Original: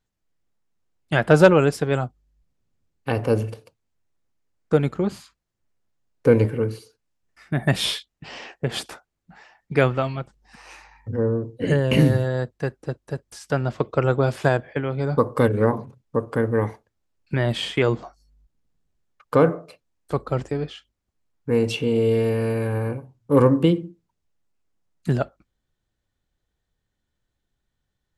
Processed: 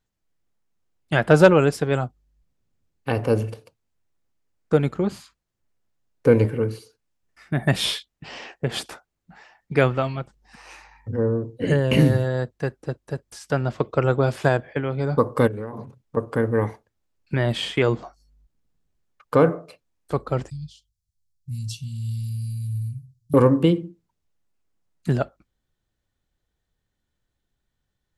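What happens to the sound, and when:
15.47–16.17 compressor 12:1, threshold -27 dBFS
20.5–23.34 inverse Chebyshev band-stop 390–1600 Hz, stop band 60 dB

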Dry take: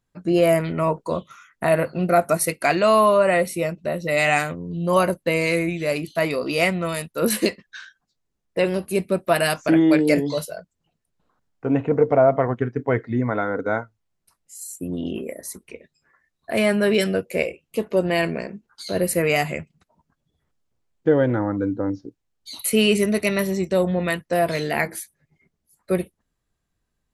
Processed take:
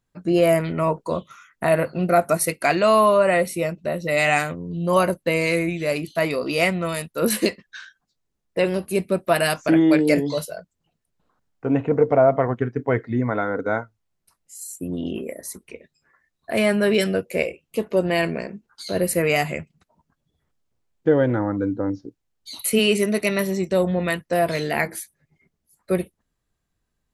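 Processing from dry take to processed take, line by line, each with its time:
22.78–23.69 HPF 220 Hz -> 100 Hz

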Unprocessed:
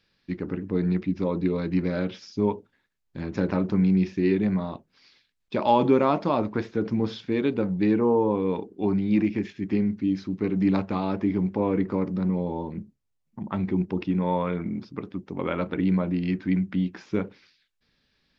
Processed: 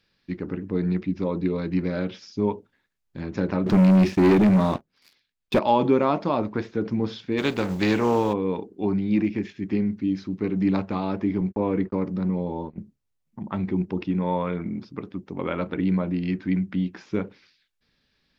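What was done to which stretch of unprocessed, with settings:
3.66–5.59 sample leveller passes 3
7.37–8.32 spectral contrast lowered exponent 0.61
11.41–12.79 gate -34 dBFS, range -55 dB

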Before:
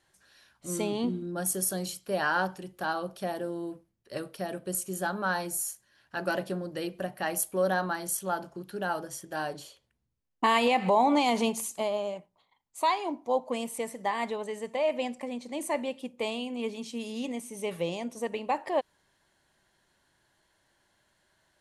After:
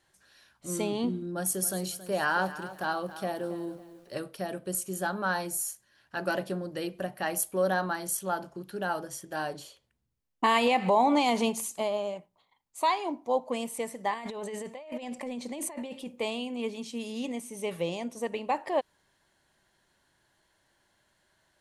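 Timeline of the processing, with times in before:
1.32–4.17 lo-fi delay 0.274 s, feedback 35%, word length 9-bit, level -14 dB
14.14–16.19 negative-ratio compressor -38 dBFS

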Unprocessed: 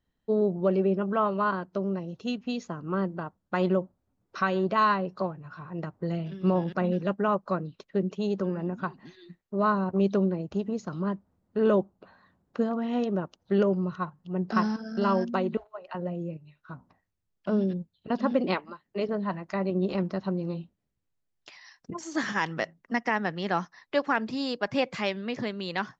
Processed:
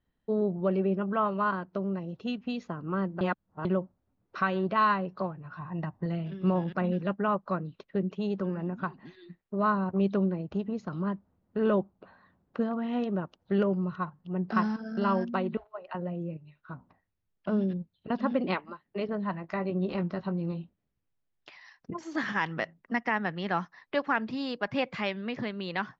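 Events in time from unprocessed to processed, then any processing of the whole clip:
3.21–3.65 reverse
5.56–6.06 comb 1.1 ms, depth 55%
19.42–20.52 doubler 18 ms -10 dB
whole clip: LPF 3400 Hz 12 dB/oct; dynamic EQ 450 Hz, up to -4 dB, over -35 dBFS, Q 0.76

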